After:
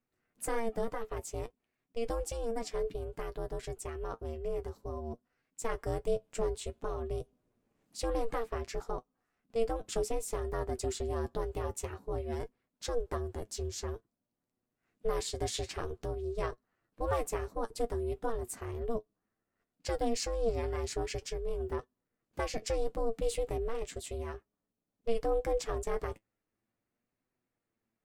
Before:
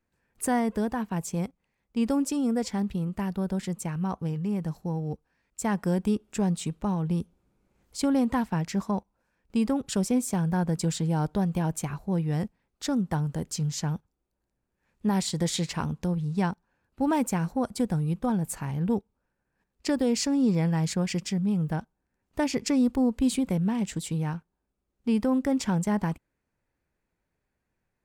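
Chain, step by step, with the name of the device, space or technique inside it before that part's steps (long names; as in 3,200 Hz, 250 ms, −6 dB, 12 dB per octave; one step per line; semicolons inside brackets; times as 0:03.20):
alien voice (ring modulation 230 Hz; flanger 0.55 Hz, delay 7.9 ms, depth 1.6 ms, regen +46%)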